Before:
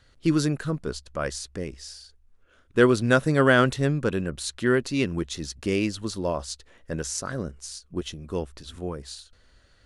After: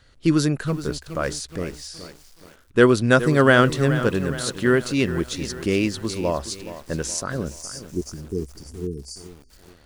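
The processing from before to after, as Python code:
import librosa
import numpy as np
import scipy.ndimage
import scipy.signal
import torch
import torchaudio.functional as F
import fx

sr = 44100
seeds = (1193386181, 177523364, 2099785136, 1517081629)

y = fx.spec_erase(x, sr, start_s=7.51, length_s=1.99, low_hz=460.0, high_hz=4500.0)
y = fx.echo_crushed(y, sr, ms=421, feedback_pct=55, bits=7, wet_db=-12.5)
y = y * librosa.db_to_amplitude(3.5)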